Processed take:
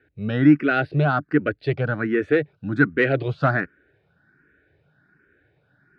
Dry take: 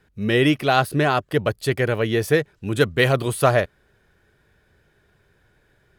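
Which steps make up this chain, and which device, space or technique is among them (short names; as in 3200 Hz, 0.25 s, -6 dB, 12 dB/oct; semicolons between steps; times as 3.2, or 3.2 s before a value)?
barber-pole phaser into a guitar amplifier (endless phaser +1.3 Hz; soft clip -10.5 dBFS, distortion -19 dB; speaker cabinet 86–3600 Hz, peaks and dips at 150 Hz +6 dB, 290 Hz +10 dB, 1000 Hz -9 dB, 1500 Hz +9 dB, 3200 Hz -8 dB)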